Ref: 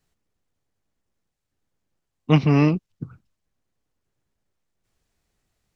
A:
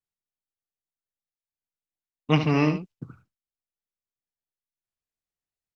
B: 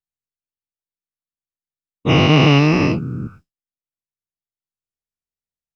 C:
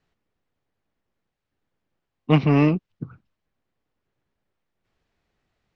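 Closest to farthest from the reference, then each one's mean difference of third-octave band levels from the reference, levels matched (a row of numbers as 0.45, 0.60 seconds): C, A, B; 1.0, 3.5, 7.0 decibels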